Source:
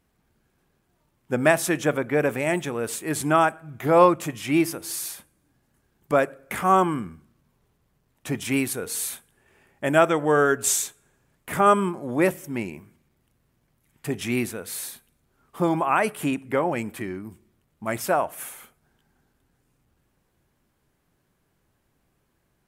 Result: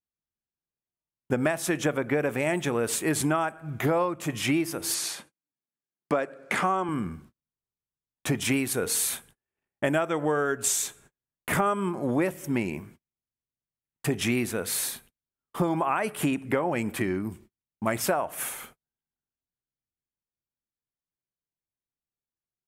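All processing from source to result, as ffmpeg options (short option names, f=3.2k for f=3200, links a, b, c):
-filter_complex "[0:a]asettb=1/sr,asplit=3[a][b][c];[a]atrim=end=4.944[d];[b]atrim=start=4.94:end=6.89,asetpts=PTS-STARTPTS,afade=t=in:d=0.004:c=qsin,afade=t=out:st=1.946:d=0.004:c=qsin,highpass=180,lowpass=7.8k,equalizer=f=4.3k:w=6.8:g=3[e];[c]atrim=start=6.886[f];[d][e]acrossfade=d=0.004:c1=hsin:c2=qsin[g];[g][f]acrossfade=d=0.004:c1=qsin:c2=hsin,agate=range=-38dB:threshold=-54dB:ratio=16:detection=peak,highshelf=f=11k:g=-4,acompressor=threshold=-28dB:ratio=12,volume=6dB"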